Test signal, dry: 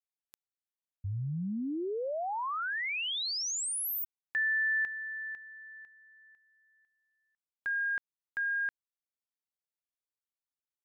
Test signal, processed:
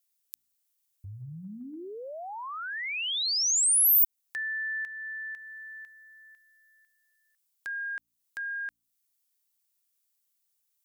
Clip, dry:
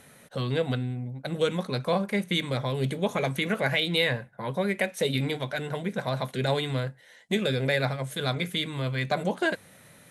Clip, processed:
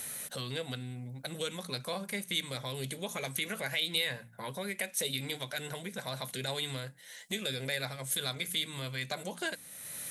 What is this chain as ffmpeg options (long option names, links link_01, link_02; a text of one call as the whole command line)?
ffmpeg -i in.wav -af "bandreject=frequency=57.51:width_type=h:width=4,bandreject=frequency=115.02:width_type=h:width=4,bandreject=frequency=172.53:width_type=h:width=4,bandreject=frequency=230.04:width_type=h:width=4,bandreject=frequency=287.55:width_type=h:width=4,acompressor=threshold=-44dB:ratio=2:attack=1.4:release=312:detection=rms,crystalizer=i=6:c=0" out.wav